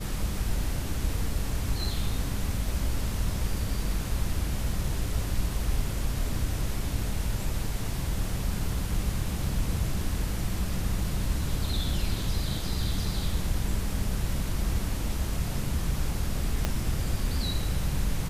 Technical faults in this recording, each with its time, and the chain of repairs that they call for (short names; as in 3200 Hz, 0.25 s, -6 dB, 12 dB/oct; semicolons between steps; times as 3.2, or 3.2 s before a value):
16.65 pop -12 dBFS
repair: de-click